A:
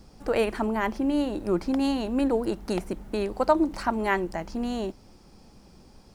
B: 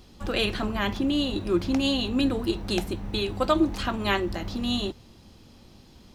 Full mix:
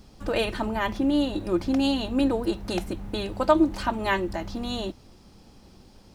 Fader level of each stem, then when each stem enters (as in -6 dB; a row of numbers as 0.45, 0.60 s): -1.0, -5.5 dB; 0.00, 0.00 s